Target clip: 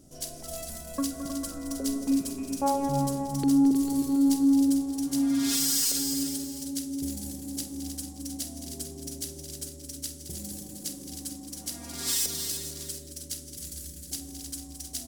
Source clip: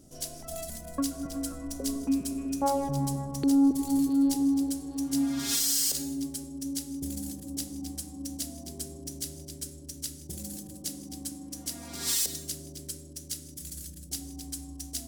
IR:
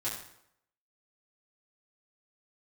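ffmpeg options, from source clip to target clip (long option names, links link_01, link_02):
-af "aecho=1:1:48|218|313|448|726:0.237|0.299|0.376|0.251|0.15"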